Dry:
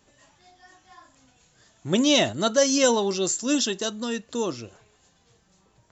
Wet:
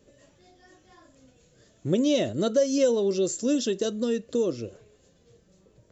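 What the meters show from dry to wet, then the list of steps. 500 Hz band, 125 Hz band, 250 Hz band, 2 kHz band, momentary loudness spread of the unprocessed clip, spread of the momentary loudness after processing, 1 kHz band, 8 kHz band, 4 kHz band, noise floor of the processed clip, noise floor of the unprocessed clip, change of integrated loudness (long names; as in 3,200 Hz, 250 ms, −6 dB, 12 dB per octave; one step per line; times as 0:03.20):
+0.5 dB, +0.5 dB, −1.0 dB, −11.0 dB, 12 LU, 7 LU, −12.0 dB, can't be measured, −10.0 dB, −62 dBFS, −64 dBFS, −2.5 dB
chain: low shelf with overshoot 660 Hz +7 dB, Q 3
downward compressor 2.5 to 1, threshold −19 dBFS, peak gain reduction 10 dB
level −4 dB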